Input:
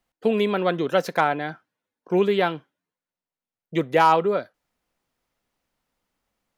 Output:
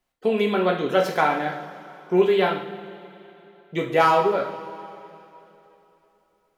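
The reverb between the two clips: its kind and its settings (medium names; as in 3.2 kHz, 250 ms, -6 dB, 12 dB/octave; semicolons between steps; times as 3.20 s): two-slope reverb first 0.58 s, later 3.2 s, from -16 dB, DRR -0.5 dB; trim -2 dB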